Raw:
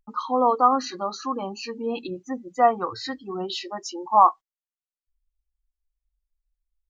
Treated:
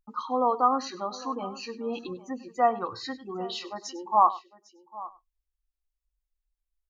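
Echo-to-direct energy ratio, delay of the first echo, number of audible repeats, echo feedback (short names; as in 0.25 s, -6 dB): -15.5 dB, 0.1 s, 2, no steady repeat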